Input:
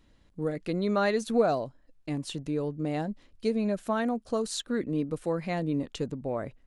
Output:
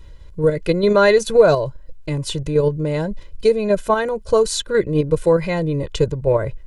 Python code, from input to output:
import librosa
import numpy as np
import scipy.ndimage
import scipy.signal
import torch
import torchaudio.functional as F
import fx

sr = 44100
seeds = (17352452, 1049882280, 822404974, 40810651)

p1 = fx.low_shelf(x, sr, hz=120.0, db=10.0)
p2 = p1 + 0.88 * np.pad(p1, (int(2.0 * sr / 1000.0), 0))[:len(p1)]
p3 = fx.level_steps(p2, sr, step_db=13)
p4 = p2 + (p3 * librosa.db_to_amplitude(3.0))
y = p4 * librosa.db_to_amplitude(4.5)